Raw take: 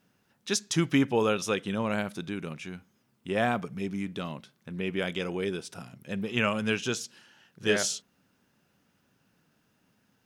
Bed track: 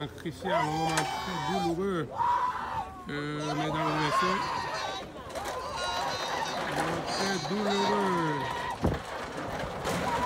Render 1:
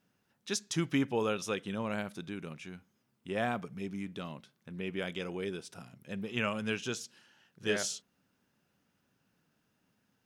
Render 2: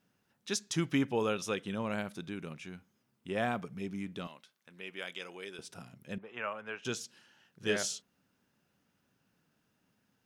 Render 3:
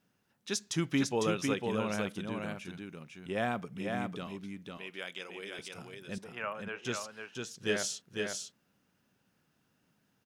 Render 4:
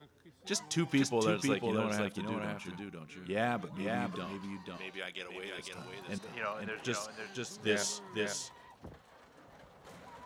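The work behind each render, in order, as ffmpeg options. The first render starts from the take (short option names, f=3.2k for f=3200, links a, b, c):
-af "volume=-6dB"
-filter_complex "[0:a]asettb=1/sr,asplit=3[a][b][c];[a]atrim=end=4.274[d];[b]atrim=start=4.27:end=5.59,asetpts=PTS-STARTPTS,afade=t=in:d=0.004:c=qsin,afade=t=out:st=1.316:d=0.004:c=qsin,highpass=f=1.1k:p=1[e];[c]atrim=start=5.586[f];[d][e]acrossfade=d=0.004:c1=hsin:c2=qsin[g];[g][f]acrossfade=d=0.004:c1=qsin:c2=hsin,asettb=1/sr,asplit=3[h][i][j];[h]atrim=end=6.184[k];[i]atrim=start=6.18:end=6.85,asetpts=PTS-STARTPTS,afade=t=in:d=0.004:c=qsin,afade=t=out:st=0.666:d=0.004:c=qsin,acrossover=split=500 2100:gain=0.112 1 0.0891[l][m][n];[l][m][n]amix=inputs=3:normalize=0[o];[j]atrim=start=6.846[p];[k][o]acrossfade=d=0.004:c1=hsin:c2=qsin[q];[q][p]acrossfade=d=0.004:c1=qsin:c2=hsin"
-af "aecho=1:1:502:0.631"
-filter_complex "[1:a]volume=-22.5dB[a];[0:a][a]amix=inputs=2:normalize=0"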